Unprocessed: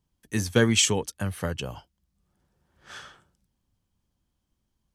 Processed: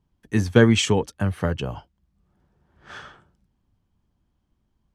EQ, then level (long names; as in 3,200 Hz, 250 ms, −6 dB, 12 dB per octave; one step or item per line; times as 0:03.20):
low-pass filter 1,600 Hz 6 dB per octave
notch filter 530 Hz, Q 15
+6.5 dB